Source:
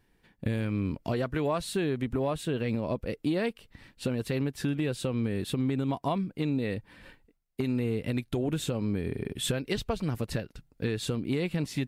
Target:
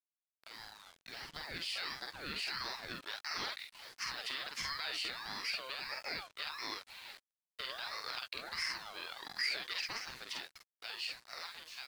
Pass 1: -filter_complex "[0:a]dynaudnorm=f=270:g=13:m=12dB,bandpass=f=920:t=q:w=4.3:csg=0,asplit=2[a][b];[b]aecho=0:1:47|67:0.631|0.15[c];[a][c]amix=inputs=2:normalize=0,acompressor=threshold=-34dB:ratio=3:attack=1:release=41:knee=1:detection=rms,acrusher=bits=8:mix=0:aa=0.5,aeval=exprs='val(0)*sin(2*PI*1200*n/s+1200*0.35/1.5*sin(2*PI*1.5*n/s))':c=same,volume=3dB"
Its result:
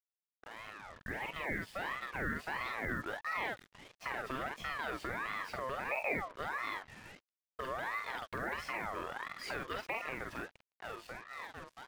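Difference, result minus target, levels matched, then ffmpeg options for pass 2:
4000 Hz band -12.0 dB
-filter_complex "[0:a]dynaudnorm=f=270:g=13:m=12dB,bandpass=f=3.3k:t=q:w=4.3:csg=0,asplit=2[a][b];[b]aecho=0:1:47|67:0.631|0.15[c];[a][c]amix=inputs=2:normalize=0,acompressor=threshold=-34dB:ratio=3:attack=1:release=41:knee=1:detection=rms,acrusher=bits=8:mix=0:aa=0.5,aeval=exprs='val(0)*sin(2*PI*1200*n/s+1200*0.35/1.5*sin(2*PI*1.5*n/s))':c=same,volume=3dB"

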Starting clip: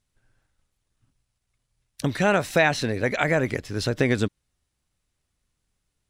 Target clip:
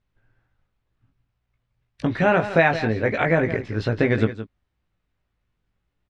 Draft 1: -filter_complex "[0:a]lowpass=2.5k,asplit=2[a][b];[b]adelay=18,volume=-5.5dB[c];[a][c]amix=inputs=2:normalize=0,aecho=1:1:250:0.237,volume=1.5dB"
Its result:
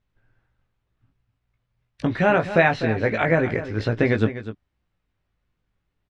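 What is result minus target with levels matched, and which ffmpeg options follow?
echo 82 ms late
-filter_complex "[0:a]lowpass=2.5k,asplit=2[a][b];[b]adelay=18,volume=-5.5dB[c];[a][c]amix=inputs=2:normalize=0,aecho=1:1:168:0.237,volume=1.5dB"

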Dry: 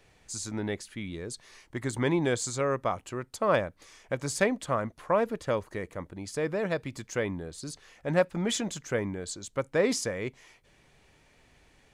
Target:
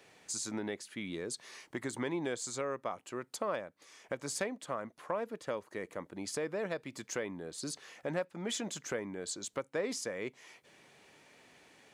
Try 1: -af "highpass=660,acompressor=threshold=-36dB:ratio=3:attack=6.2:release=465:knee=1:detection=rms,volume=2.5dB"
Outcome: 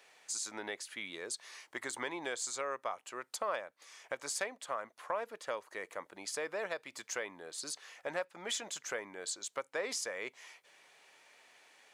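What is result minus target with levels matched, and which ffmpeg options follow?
250 Hz band -10.0 dB
-af "highpass=210,acompressor=threshold=-36dB:ratio=3:attack=6.2:release=465:knee=1:detection=rms,volume=2.5dB"

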